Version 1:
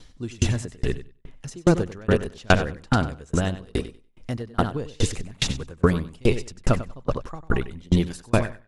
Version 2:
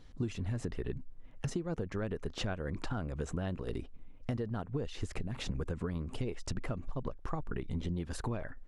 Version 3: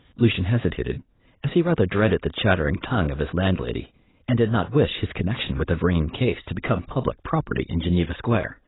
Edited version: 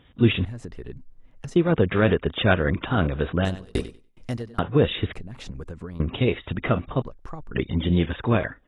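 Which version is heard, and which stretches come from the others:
3
0:00.45–0:01.56: punch in from 2
0:03.45–0:04.59: punch in from 1
0:05.13–0:06.00: punch in from 2
0:07.02–0:07.55: punch in from 2

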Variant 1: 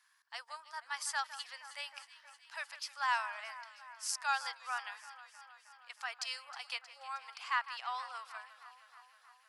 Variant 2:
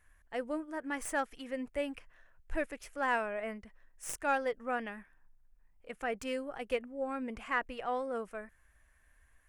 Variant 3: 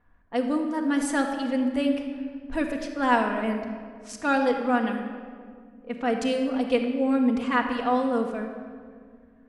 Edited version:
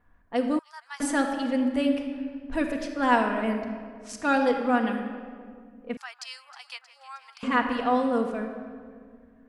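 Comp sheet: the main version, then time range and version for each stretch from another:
3
0:00.59–0:01.00: punch in from 1
0:05.97–0:07.43: punch in from 1
not used: 2

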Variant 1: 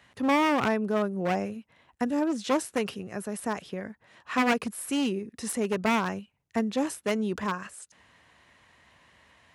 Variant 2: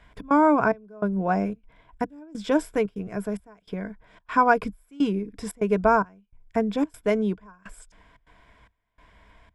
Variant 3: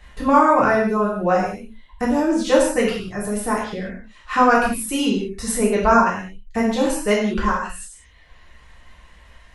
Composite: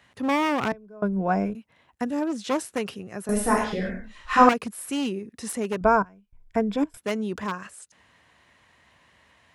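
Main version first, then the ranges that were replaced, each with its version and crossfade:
1
0:00.72–0:01.55: punch in from 2
0:03.29–0:04.49: punch in from 3
0:05.81–0:06.97: punch in from 2

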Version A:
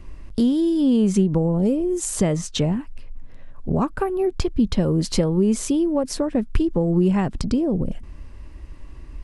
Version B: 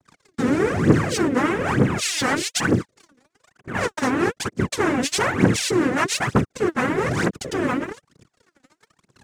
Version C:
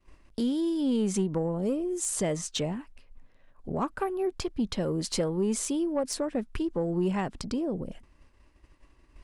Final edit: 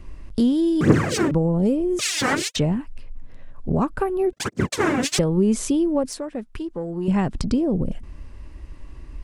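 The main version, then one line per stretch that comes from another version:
A
0:00.81–0:01.31: punch in from B
0:01.99–0:02.56: punch in from B
0:04.33–0:05.19: punch in from B
0:06.10–0:07.08: punch in from C

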